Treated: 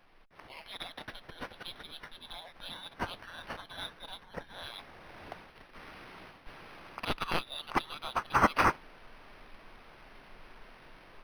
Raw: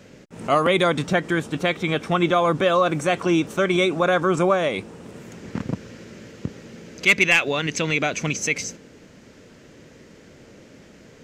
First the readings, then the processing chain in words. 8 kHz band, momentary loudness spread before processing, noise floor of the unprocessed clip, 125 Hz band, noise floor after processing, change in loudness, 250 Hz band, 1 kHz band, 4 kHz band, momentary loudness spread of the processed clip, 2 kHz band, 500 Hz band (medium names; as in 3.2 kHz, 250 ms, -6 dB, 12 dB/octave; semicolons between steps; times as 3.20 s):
-21.0 dB, 17 LU, -49 dBFS, -18.0 dB, -58 dBFS, -14.5 dB, -19.0 dB, -9.0 dB, -12.0 dB, 25 LU, -15.5 dB, -21.5 dB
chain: FFT filter 220 Hz 0 dB, 1.5 kHz -29 dB, 3.4 kHz -9 dB; reverse; compression 6:1, threshold -32 dBFS, peak gain reduction 12 dB; reverse; inverse Chebyshev band-stop 120–810 Hz, stop band 80 dB; level rider gain up to 10.5 dB; peaking EQ 3.6 kHz -4.5 dB 1.4 oct; decimation joined by straight lines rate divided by 6×; trim +9 dB